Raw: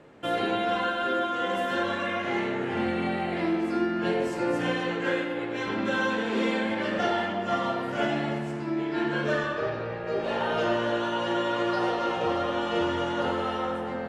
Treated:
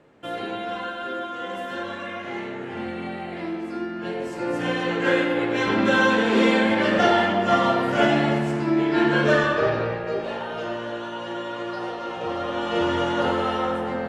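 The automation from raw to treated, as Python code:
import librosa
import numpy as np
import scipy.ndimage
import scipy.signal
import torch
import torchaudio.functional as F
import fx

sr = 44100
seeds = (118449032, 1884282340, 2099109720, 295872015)

y = fx.gain(x, sr, db=fx.line((4.12, -3.5), (5.25, 8.0), (9.84, 8.0), (10.47, -4.0), (12.05, -4.0), (12.95, 5.0)))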